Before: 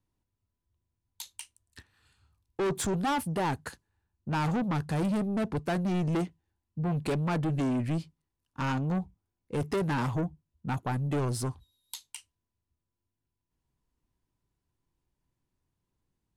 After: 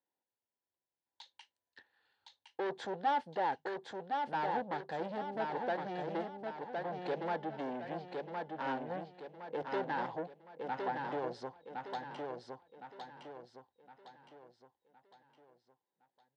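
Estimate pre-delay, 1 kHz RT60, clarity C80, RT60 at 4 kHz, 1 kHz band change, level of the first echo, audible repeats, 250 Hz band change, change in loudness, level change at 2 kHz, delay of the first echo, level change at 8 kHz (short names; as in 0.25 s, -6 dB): none, none, none, none, -0.5 dB, -4.0 dB, 5, -13.5 dB, -8.0 dB, -3.5 dB, 1.063 s, under -20 dB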